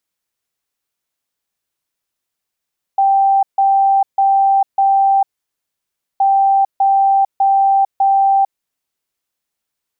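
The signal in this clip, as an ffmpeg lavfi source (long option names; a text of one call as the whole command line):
ffmpeg -f lavfi -i "aevalsrc='0.355*sin(2*PI*784*t)*clip(min(mod(mod(t,3.22),0.6),0.45-mod(mod(t,3.22),0.6))/0.005,0,1)*lt(mod(t,3.22),2.4)':duration=6.44:sample_rate=44100" out.wav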